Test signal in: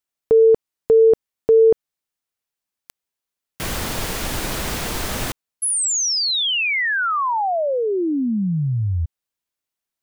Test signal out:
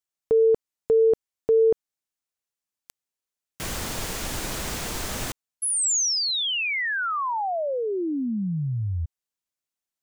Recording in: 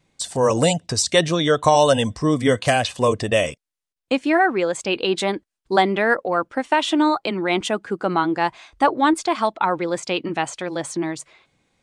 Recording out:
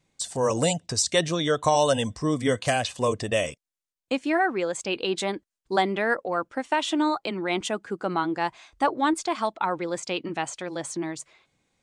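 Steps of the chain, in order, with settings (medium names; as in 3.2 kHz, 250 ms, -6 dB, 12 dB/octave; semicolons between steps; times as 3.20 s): peaking EQ 7 kHz +4 dB 0.88 oct; trim -6 dB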